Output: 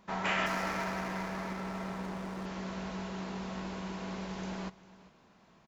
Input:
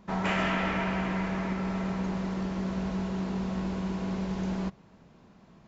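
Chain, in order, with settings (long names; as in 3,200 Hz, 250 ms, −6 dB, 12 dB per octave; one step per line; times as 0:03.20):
0:00.46–0:02.46: running median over 15 samples
low-shelf EQ 440 Hz −11 dB
single-tap delay 398 ms −19.5 dB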